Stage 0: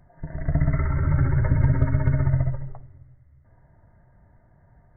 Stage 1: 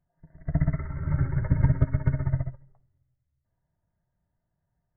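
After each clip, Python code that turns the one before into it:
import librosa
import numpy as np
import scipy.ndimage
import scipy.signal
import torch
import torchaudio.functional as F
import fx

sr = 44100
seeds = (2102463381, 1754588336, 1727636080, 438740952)

y = fx.peak_eq(x, sr, hz=170.0, db=6.5, octaves=0.23)
y = fx.upward_expand(y, sr, threshold_db=-30.0, expansion=2.5)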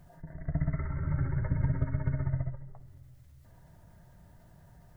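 y = fx.env_flatten(x, sr, amount_pct=50)
y = y * 10.0 ** (-8.5 / 20.0)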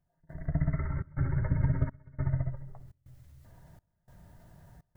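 y = fx.step_gate(x, sr, bpm=103, pattern='..xxxxx.xxxxx', floor_db=-24.0, edge_ms=4.5)
y = y * 10.0 ** (1.5 / 20.0)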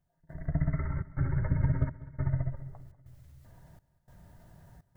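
y = fx.echo_feedback(x, sr, ms=196, feedback_pct=52, wet_db=-19.0)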